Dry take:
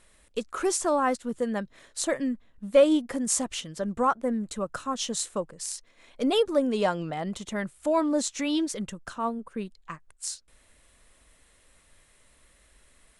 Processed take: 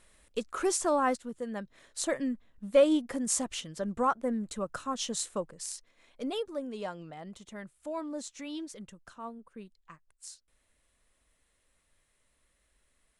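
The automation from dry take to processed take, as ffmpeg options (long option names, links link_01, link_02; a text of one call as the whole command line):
ffmpeg -i in.wav -af "volume=4dB,afade=type=out:start_time=1.1:duration=0.24:silence=0.421697,afade=type=in:start_time=1.34:duration=0.71:silence=0.473151,afade=type=out:start_time=5.51:duration=0.96:silence=0.354813" out.wav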